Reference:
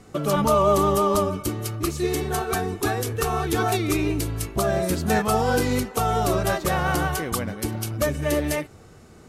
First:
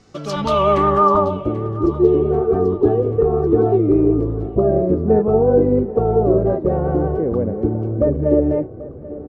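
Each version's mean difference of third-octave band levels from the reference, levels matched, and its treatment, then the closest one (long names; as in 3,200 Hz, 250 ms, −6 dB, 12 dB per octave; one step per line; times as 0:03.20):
13.5 dB: automatic gain control gain up to 14.5 dB
low-pass filter sweep 5,400 Hz → 460 Hz, 0:00.27–0:01.64
on a send: repeating echo 786 ms, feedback 55%, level −18 dB
on the sum: level −4 dB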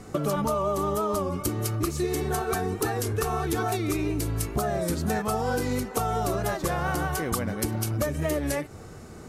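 3.0 dB: downward compressor 6 to 1, threshold −29 dBFS, peak gain reduction 14 dB
parametric band 3,100 Hz −4 dB 0.97 octaves
wow of a warped record 33 1/3 rpm, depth 100 cents
level +5 dB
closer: second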